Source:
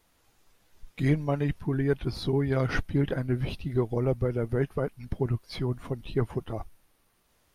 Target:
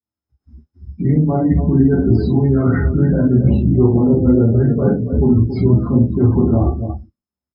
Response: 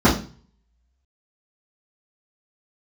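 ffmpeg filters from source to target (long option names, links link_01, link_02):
-filter_complex "[0:a]areverse,acompressor=threshold=-39dB:ratio=12,areverse,aecho=1:1:44|71|279:0.562|0.251|0.355,flanger=delay=8.6:depth=4.1:regen=-16:speed=0.85:shape=triangular,asplit=2[link_01][link_02];[link_02]alimiter=level_in=17dB:limit=-24dB:level=0:latency=1:release=34,volume=-17dB,volume=0.5dB[link_03];[link_01][link_03]amix=inputs=2:normalize=0,aeval=exprs='val(0)+0.000501*sin(2*PI*5200*n/s)':channel_layout=same,agate=range=-20dB:threshold=-54dB:ratio=16:detection=peak[link_04];[1:a]atrim=start_sample=2205,afade=type=out:start_time=0.23:duration=0.01,atrim=end_sample=10584[link_05];[link_04][link_05]afir=irnorm=-1:irlink=0,afftdn=noise_reduction=32:noise_floor=-25,volume=-3dB"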